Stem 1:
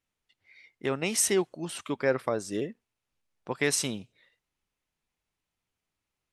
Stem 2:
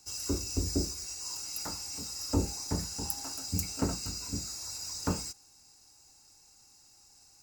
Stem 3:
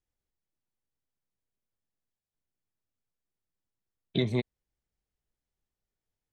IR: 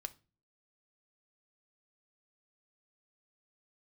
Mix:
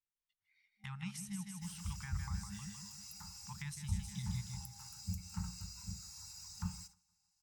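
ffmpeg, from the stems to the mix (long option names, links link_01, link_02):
-filter_complex "[0:a]highshelf=frequency=6300:gain=7,volume=-5.5dB,asplit=2[link_01][link_02];[link_02]volume=-7dB[link_03];[1:a]adelay=1550,volume=-6dB,asplit=2[link_04][link_05];[link_05]volume=-20.5dB[link_06];[2:a]volume=-10.5dB,asplit=2[link_07][link_08];[link_08]volume=-7dB[link_09];[link_03][link_06][link_09]amix=inputs=3:normalize=0,aecho=0:1:156|312|468|624|780|936|1092:1|0.47|0.221|0.104|0.0488|0.0229|0.0108[link_10];[link_01][link_04][link_07][link_10]amix=inputs=4:normalize=0,agate=range=-15dB:threshold=-52dB:ratio=16:detection=peak,afftfilt=real='re*(1-between(b*sr/4096,210,780))':imag='im*(1-between(b*sr/4096,210,780))':win_size=4096:overlap=0.75,acrossover=split=370[link_11][link_12];[link_12]acompressor=threshold=-49dB:ratio=6[link_13];[link_11][link_13]amix=inputs=2:normalize=0"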